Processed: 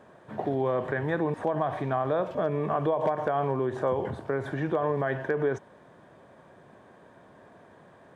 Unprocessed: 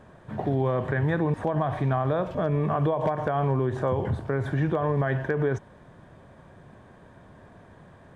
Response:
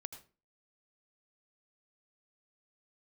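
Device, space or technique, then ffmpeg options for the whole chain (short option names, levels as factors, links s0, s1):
filter by subtraction: -filter_complex "[0:a]asplit=2[s0][s1];[s1]lowpass=430,volume=-1[s2];[s0][s2]amix=inputs=2:normalize=0,volume=0.794"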